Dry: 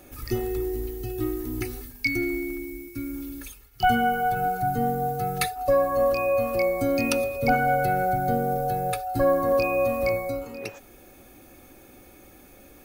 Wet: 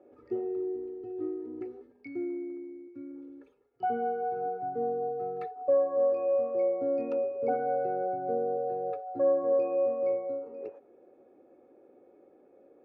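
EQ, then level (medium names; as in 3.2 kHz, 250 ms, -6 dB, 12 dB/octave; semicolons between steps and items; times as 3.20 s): ladder band-pass 530 Hz, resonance 50%; bass shelf 370 Hz +11.5 dB; 0.0 dB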